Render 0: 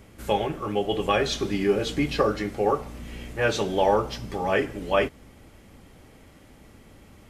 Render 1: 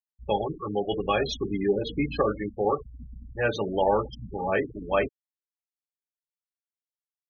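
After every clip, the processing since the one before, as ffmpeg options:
-af "afftfilt=real='re*gte(hypot(re,im),0.0708)':imag='im*gte(hypot(re,im),0.0708)':win_size=1024:overlap=0.75,volume=0.794"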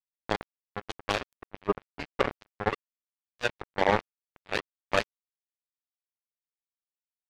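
-af "acrusher=bits=2:mix=0:aa=0.5"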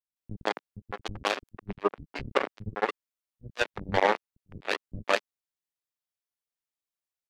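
-filter_complex "[0:a]acrossover=split=230[s0][s1];[s1]adelay=160[s2];[s0][s2]amix=inputs=2:normalize=0,volume=1.12"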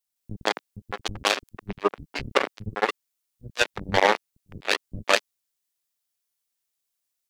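-af "highshelf=f=3200:g=10.5,volume=1.41"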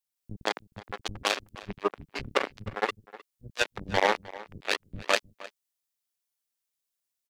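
-filter_complex "[0:a]asplit=2[s0][s1];[s1]adelay=309,volume=0.126,highshelf=f=4000:g=-6.95[s2];[s0][s2]amix=inputs=2:normalize=0,volume=0.596"

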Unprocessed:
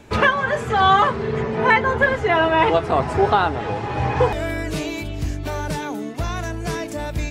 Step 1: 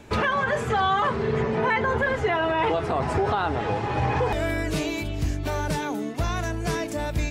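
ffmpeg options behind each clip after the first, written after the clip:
-af "alimiter=limit=0.2:level=0:latency=1:release=35,volume=0.891"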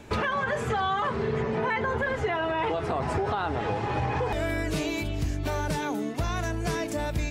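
-af "acompressor=threshold=0.0562:ratio=3"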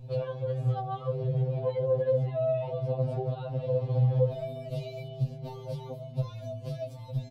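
-af "aeval=exprs='val(0)+0.00708*(sin(2*PI*60*n/s)+sin(2*PI*2*60*n/s)/2+sin(2*PI*3*60*n/s)/3+sin(2*PI*4*60*n/s)/4+sin(2*PI*5*60*n/s)/5)':c=same,firequalizer=gain_entry='entry(100,0);entry(180,9);entry(320,-24);entry(490,6);entry(840,-13);entry(1800,-28);entry(2600,-15);entry(4000,-10);entry(6700,-24);entry(11000,-16)':delay=0.05:min_phase=1,afftfilt=real='re*2.45*eq(mod(b,6),0)':imag='im*2.45*eq(mod(b,6),0)':win_size=2048:overlap=0.75,volume=1.12"

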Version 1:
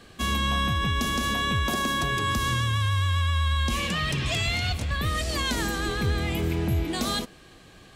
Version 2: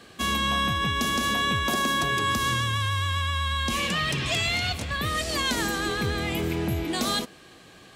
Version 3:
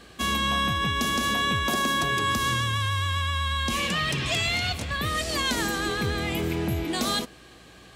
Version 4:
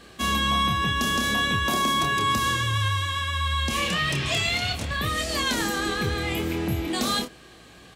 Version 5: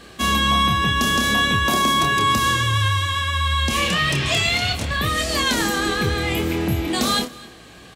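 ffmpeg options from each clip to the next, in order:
-af "highpass=f=170:p=1,volume=1.26"
-af "aeval=exprs='val(0)+0.00141*(sin(2*PI*60*n/s)+sin(2*PI*2*60*n/s)/2+sin(2*PI*3*60*n/s)/3+sin(2*PI*4*60*n/s)/4+sin(2*PI*5*60*n/s)/5)':c=same"
-filter_complex "[0:a]asplit=2[s0][s1];[s1]adelay=28,volume=0.501[s2];[s0][s2]amix=inputs=2:normalize=0"
-af "aecho=1:1:259:0.0841,volume=1.78"

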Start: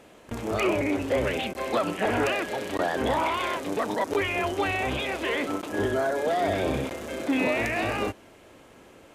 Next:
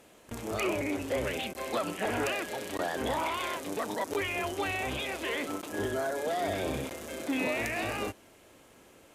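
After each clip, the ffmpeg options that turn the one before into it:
-af "aemphasis=mode=production:type=cd,volume=0.501"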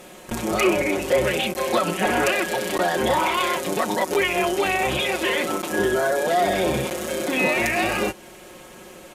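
-filter_complex "[0:a]aecho=1:1:5.5:0.7,asplit=2[s0][s1];[s1]acompressor=threshold=0.0126:ratio=6,volume=0.891[s2];[s0][s2]amix=inputs=2:normalize=0,volume=2.24"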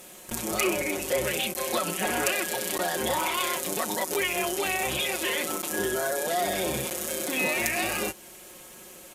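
-af "crystalizer=i=2.5:c=0,volume=0.398"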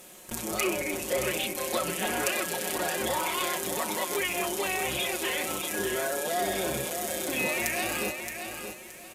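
-af "aecho=1:1:622|1244|1866:0.422|0.114|0.0307,volume=0.75"

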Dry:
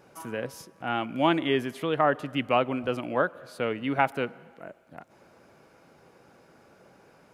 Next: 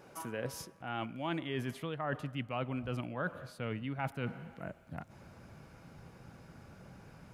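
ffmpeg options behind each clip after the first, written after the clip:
-af "asubboost=boost=7:cutoff=150,areverse,acompressor=threshold=0.02:ratio=6,areverse"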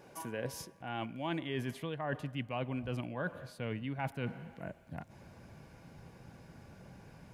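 -af "bandreject=f=1300:w=6.2"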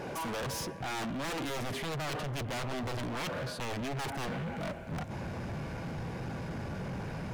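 -af "aeval=exprs='0.0794*sin(PI/2*6.31*val(0)/0.0794)':c=same,lowpass=f=3700:p=1,asoftclip=type=hard:threshold=0.0237,volume=0.794"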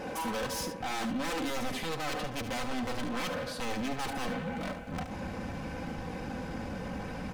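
-filter_complex "[0:a]aecho=1:1:3.9:0.63,asplit=2[s0][s1];[s1]aecho=0:1:73:0.316[s2];[s0][s2]amix=inputs=2:normalize=0"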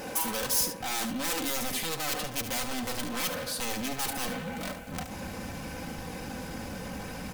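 -af "aemphasis=mode=production:type=75fm"

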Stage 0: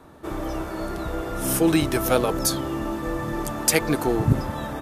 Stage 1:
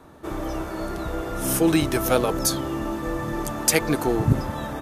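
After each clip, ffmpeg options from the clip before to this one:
-af "equalizer=f=6300:w=7.7:g=2.5"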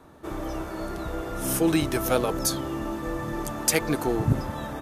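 -af "asoftclip=type=hard:threshold=0.501,volume=0.708"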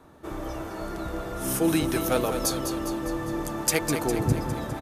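-af "aecho=1:1:203|406|609|812|1015|1218|1421:0.398|0.231|0.134|0.0777|0.0451|0.0261|0.0152,volume=0.841"

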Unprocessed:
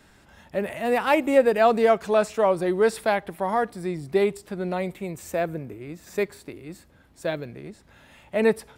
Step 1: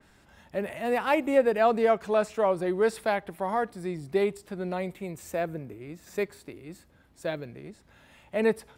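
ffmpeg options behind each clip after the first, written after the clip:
-af "adynamicequalizer=threshold=0.0141:dfrequency=3200:dqfactor=0.7:tfrequency=3200:tqfactor=0.7:attack=5:release=100:ratio=0.375:range=2:mode=cutabove:tftype=highshelf,volume=0.631"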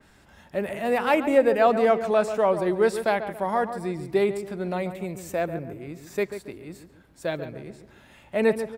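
-filter_complex "[0:a]asplit=2[s0][s1];[s1]adelay=139,lowpass=f=1800:p=1,volume=0.335,asplit=2[s2][s3];[s3]adelay=139,lowpass=f=1800:p=1,volume=0.41,asplit=2[s4][s5];[s5]adelay=139,lowpass=f=1800:p=1,volume=0.41,asplit=2[s6][s7];[s7]adelay=139,lowpass=f=1800:p=1,volume=0.41[s8];[s0][s2][s4][s6][s8]amix=inputs=5:normalize=0,volume=1.41"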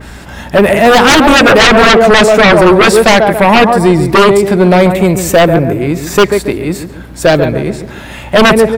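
-af "aeval=exprs='val(0)+0.00178*(sin(2*PI*60*n/s)+sin(2*PI*2*60*n/s)/2+sin(2*PI*3*60*n/s)/3+sin(2*PI*4*60*n/s)/4+sin(2*PI*5*60*n/s)/5)':c=same,aeval=exprs='0.422*sin(PI/2*5.62*val(0)/0.422)':c=same,volume=2"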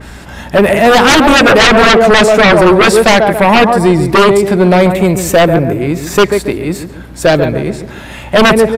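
-af "aresample=32000,aresample=44100,volume=0.891"

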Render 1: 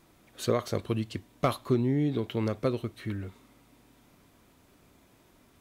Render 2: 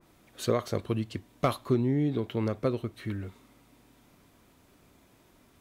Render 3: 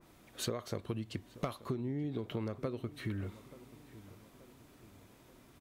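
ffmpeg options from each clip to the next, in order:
-af "adynamicequalizer=threshold=0.00447:dfrequency=2200:dqfactor=0.7:tfrequency=2200:tqfactor=0.7:attack=5:release=100:ratio=0.375:range=2:mode=cutabove:tftype=highshelf"
-filter_complex "[0:a]acompressor=threshold=0.0224:ratio=12,asplit=2[s0][s1];[s1]adelay=881,lowpass=f=2000:p=1,volume=0.126,asplit=2[s2][s3];[s3]adelay=881,lowpass=f=2000:p=1,volume=0.52,asplit=2[s4][s5];[s5]adelay=881,lowpass=f=2000:p=1,volume=0.52,asplit=2[s6][s7];[s7]adelay=881,lowpass=f=2000:p=1,volume=0.52[s8];[s0][s2][s4][s6][s8]amix=inputs=5:normalize=0"

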